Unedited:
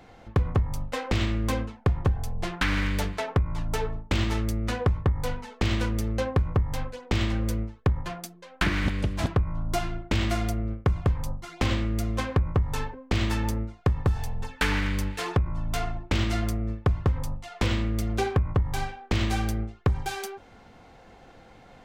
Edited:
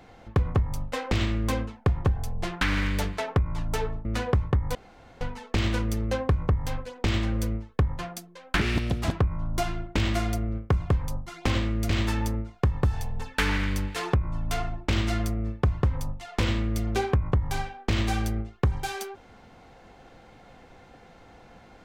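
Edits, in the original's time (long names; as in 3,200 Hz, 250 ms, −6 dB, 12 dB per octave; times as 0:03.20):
0:04.05–0:04.58: remove
0:05.28: splice in room tone 0.46 s
0:08.68–0:09.20: play speed 120%
0:12.05–0:13.12: remove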